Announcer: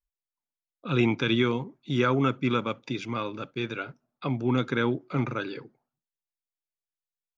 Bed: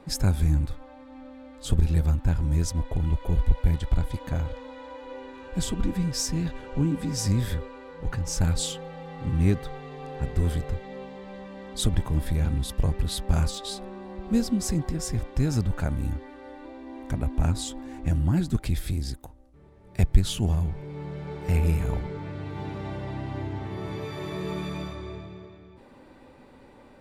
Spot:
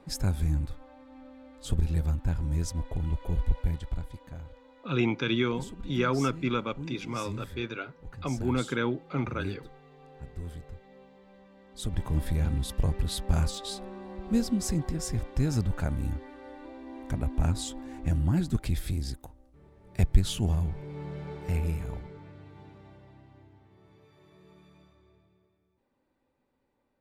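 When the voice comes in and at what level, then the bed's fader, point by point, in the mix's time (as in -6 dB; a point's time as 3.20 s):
4.00 s, -3.0 dB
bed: 3.56 s -5 dB
4.33 s -14.5 dB
11.69 s -14.5 dB
12.10 s -2.5 dB
21.20 s -2.5 dB
23.63 s -25 dB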